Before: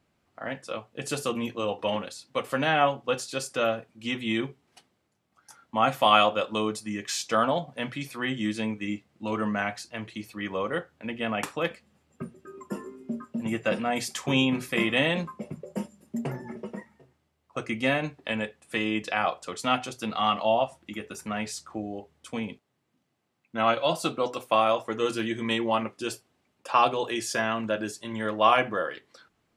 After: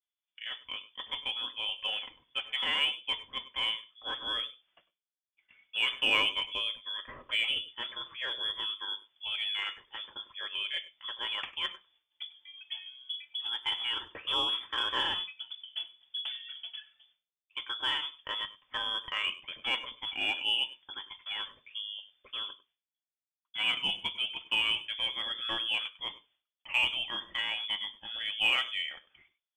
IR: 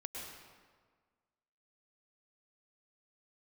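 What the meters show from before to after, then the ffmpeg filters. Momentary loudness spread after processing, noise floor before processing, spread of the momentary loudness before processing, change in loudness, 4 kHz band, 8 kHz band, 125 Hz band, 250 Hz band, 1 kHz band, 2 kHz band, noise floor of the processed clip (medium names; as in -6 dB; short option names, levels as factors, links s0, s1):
13 LU, -74 dBFS, 15 LU, -4.0 dB, +5.5 dB, under -15 dB, under -20 dB, -24.0 dB, -14.5 dB, -2.5 dB, under -85 dBFS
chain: -filter_complex "[0:a]lowpass=f=3100:t=q:w=0.5098,lowpass=f=3100:t=q:w=0.6013,lowpass=f=3100:t=q:w=0.9,lowpass=f=3100:t=q:w=2.563,afreqshift=-3600,agate=range=0.0224:threshold=0.00112:ratio=3:detection=peak,asplit=2[s0][s1];[s1]asoftclip=type=tanh:threshold=0.0891,volume=0.447[s2];[s0][s2]amix=inputs=2:normalize=0,lowshelf=f=170:g=6[s3];[1:a]atrim=start_sample=2205,atrim=end_sample=4410[s4];[s3][s4]afir=irnorm=-1:irlink=0,volume=0.631"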